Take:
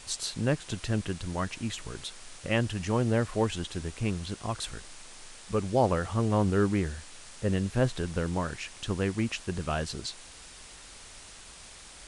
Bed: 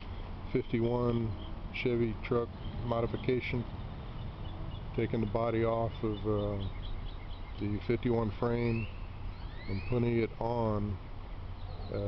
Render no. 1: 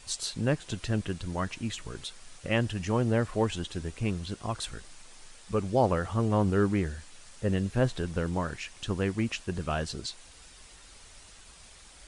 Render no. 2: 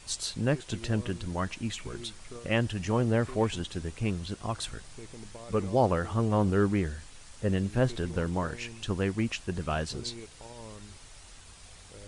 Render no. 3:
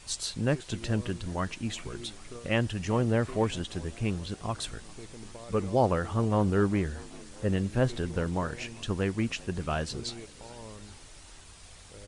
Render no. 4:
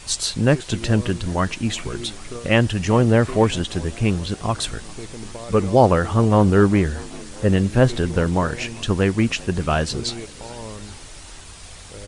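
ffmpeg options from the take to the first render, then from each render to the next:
-af "afftdn=nr=6:nf=-49"
-filter_complex "[1:a]volume=0.188[s0];[0:a][s0]amix=inputs=2:normalize=0"
-filter_complex "[0:a]asplit=5[s0][s1][s2][s3][s4];[s1]adelay=398,afreqshift=60,volume=0.0631[s5];[s2]adelay=796,afreqshift=120,volume=0.0398[s6];[s3]adelay=1194,afreqshift=180,volume=0.0251[s7];[s4]adelay=1592,afreqshift=240,volume=0.0158[s8];[s0][s5][s6][s7][s8]amix=inputs=5:normalize=0"
-af "volume=3.35"

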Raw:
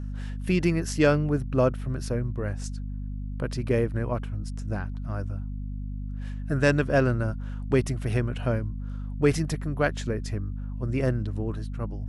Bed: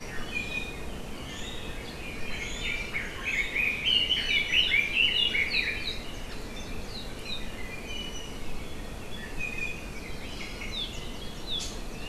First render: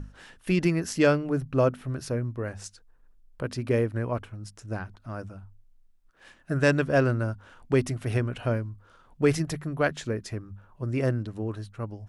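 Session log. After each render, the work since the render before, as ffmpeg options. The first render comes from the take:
-af "bandreject=f=50:t=h:w=6,bandreject=f=100:t=h:w=6,bandreject=f=150:t=h:w=6,bandreject=f=200:t=h:w=6,bandreject=f=250:t=h:w=6"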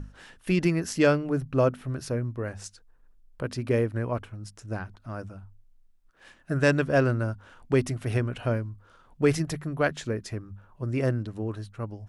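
-af anull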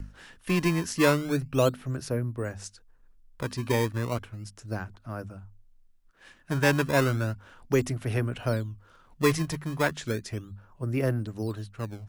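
-filter_complex "[0:a]acrossover=split=260|610|2600[s0][s1][s2][s3];[s0]volume=17.8,asoftclip=hard,volume=0.0562[s4];[s1]acrusher=samples=18:mix=1:aa=0.000001:lfo=1:lforange=28.8:lforate=0.34[s5];[s4][s5][s2][s3]amix=inputs=4:normalize=0"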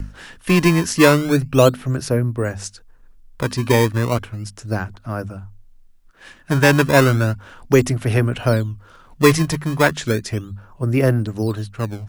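-af "volume=3.35,alimiter=limit=0.891:level=0:latency=1"

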